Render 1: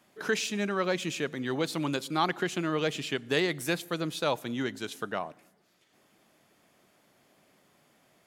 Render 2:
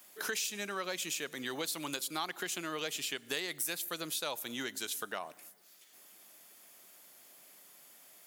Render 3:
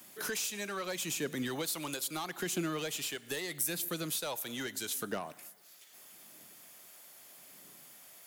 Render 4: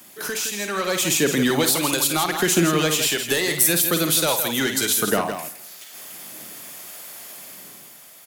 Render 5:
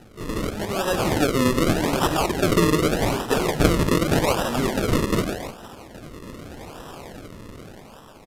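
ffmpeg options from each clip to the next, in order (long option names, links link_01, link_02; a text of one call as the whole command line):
ffmpeg -i in.wav -af "aemphasis=mode=production:type=riaa,acompressor=threshold=-36dB:ratio=3" out.wav
ffmpeg -i in.wav -filter_complex "[0:a]acrossover=split=380|540|7600[link_01][link_02][link_03][link_04];[link_01]aphaser=in_gain=1:out_gain=1:delay=1.4:decay=0.72:speed=0.78:type=triangular[link_05];[link_03]asoftclip=type=tanh:threshold=-38.5dB[link_06];[link_05][link_02][link_06][link_04]amix=inputs=4:normalize=0,volume=3dB" out.wav
ffmpeg -i in.wav -filter_complex "[0:a]dynaudnorm=framelen=120:gausssize=13:maxgain=8dB,asplit=2[link_01][link_02];[link_02]aecho=0:1:52.48|163.3:0.355|0.398[link_03];[link_01][link_03]amix=inputs=2:normalize=0,volume=7.5dB" out.wav
ffmpeg -i in.wav -af "acrusher=samples=39:mix=1:aa=0.000001:lfo=1:lforange=39:lforate=0.84,aresample=32000,aresample=44100" out.wav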